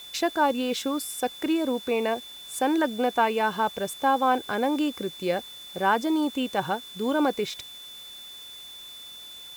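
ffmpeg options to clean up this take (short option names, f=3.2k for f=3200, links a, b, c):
-af "bandreject=f=3.5k:w=30,afwtdn=0.0032"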